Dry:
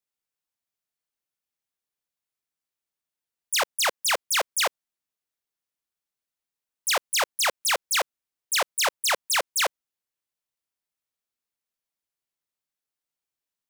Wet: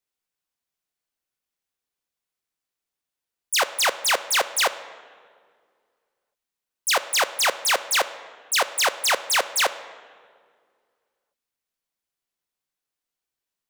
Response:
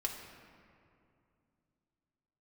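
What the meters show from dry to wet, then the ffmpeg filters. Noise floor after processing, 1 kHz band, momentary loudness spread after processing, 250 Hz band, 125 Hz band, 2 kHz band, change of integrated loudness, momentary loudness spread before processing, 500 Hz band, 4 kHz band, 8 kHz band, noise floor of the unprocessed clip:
under -85 dBFS, +3.5 dB, 5 LU, +3.5 dB, n/a, +3.5 dB, +2.5 dB, 4 LU, +3.5 dB, +3.0 dB, +2.0 dB, under -85 dBFS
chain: -filter_complex "[0:a]asplit=2[a][b];[1:a]atrim=start_sample=2205,asetrate=61740,aresample=44100,highshelf=f=10k:g=-10.5[c];[b][c]afir=irnorm=-1:irlink=0,volume=-3.5dB[d];[a][d]amix=inputs=2:normalize=0"

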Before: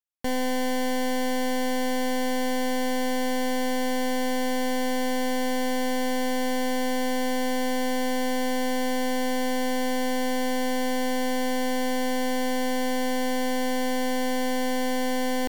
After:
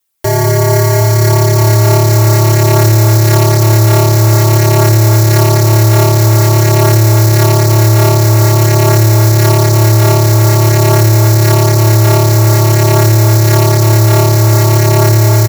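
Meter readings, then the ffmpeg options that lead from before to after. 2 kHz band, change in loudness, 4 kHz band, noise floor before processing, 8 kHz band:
+11.0 dB, +19.0 dB, +13.0 dB, -25 dBFS, +19.5 dB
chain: -filter_complex "[0:a]highshelf=f=7.9k:g=11,flanger=delay=4.9:depth=4.6:regen=-27:speed=0.49:shape=triangular,aecho=1:1:4.1:0.79,asplit=2[a][b];[b]aecho=0:1:198|756:0.501|0.355[c];[a][c]amix=inputs=2:normalize=0,dynaudnorm=f=760:g=5:m=11.5dB,asplit=2[d][e];[e]volume=11.5dB,asoftclip=hard,volume=-11.5dB,volume=-7dB[f];[d][f]amix=inputs=2:normalize=0,aeval=exprs='val(0)*sin(2*PI*110*n/s)':c=same,asoftclip=type=tanh:threshold=-13dB,acontrast=86,lowshelf=f=97:g=-6.5,alimiter=level_in=14.5dB:limit=-1dB:release=50:level=0:latency=1,volume=-1dB"

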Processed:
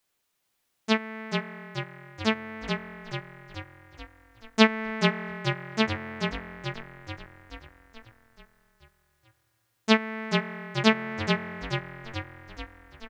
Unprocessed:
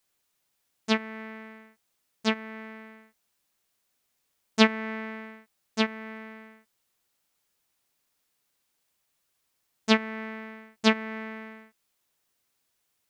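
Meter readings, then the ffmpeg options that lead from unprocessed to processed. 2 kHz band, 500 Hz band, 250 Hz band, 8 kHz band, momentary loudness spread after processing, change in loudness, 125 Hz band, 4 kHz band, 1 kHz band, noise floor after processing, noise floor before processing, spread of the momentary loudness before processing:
+3.0 dB, +3.0 dB, +2.0 dB, +0.5 dB, 20 LU, 0.0 dB, n/a, +2.0 dB, +3.0 dB, -76 dBFS, -77 dBFS, 21 LU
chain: -filter_complex "[0:a]bass=f=250:g=-1,treble=f=4k:g=-3,asplit=2[a][b];[b]asplit=8[c][d][e][f][g][h][i][j];[c]adelay=432,afreqshift=-42,volume=-5dB[k];[d]adelay=864,afreqshift=-84,volume=-9.7dB[l];[e]adelay=1296,afreqshift=-126,volume=-14.5dB[m];[f]adelay=1728,afreqshift=-168,volume=-19.2dB[n];[g]adelay=2160,afreqshift=-210,volume=-23.9dB[o];[h]adelay=2592,afreqshift=-252,volume=-28.7dB[p];[i]adelay=3024,afreqshift=-294,volume=-33.4dB[q];[j]adelay=3456,afreqshift=-336,volume=-38.1dB[r];[k][l][m][n][o][p][q][r]amix=inputs=8:normalize=0[s];[a][s]amix=inputs=2:normalize=0,volume=1.5dB"

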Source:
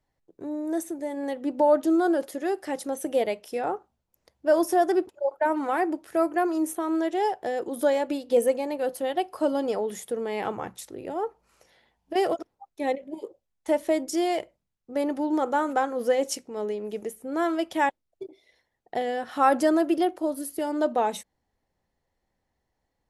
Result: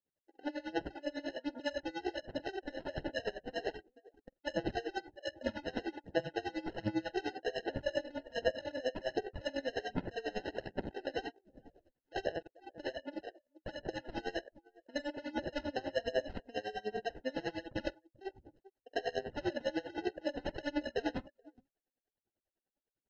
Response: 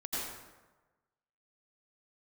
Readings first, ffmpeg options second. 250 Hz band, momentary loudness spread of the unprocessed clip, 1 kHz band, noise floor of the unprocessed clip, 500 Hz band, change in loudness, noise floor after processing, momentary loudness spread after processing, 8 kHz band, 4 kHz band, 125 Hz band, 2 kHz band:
-14.0 dB, 12 LU, -16.5 dB, -79 dBFS, -13.0 dB, -13.0 dB, under -85 dBFS, 7 LU, -20.0 dB, -3.5 dB, n/a, -7.0 dB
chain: -filter_complex "[0:a]alimiter=limit=-20.5dB:level=0:latency=1:release=95,equalizer=f=1.3k:t=o:w=1.8:g=-7,acompressor=threshold=-42dB:ratio=3,highpass=470,acrusher=samples=38:mix=1:aa=0.000001,aphaser=in_gain=1:out_gain=1:delay=4:decay=0.54:speed=1.3:type=sinusoidal,lowpass=f=5.9k:w=0.5412,lowpass=f=5.9k:w=1.3066,asplit=2[a][b];[b]aecho=0:1:47|433:0.473|0.1[c];[a][c]amix=inputs=2:normalize=0,afftdn=nr=16:nf=-58,aeval=exprs='val(0)*pow(10,-23*(0.5-0.5*cos(2*PI*10*n/s))/20)':c=same,volume=9.5dB"

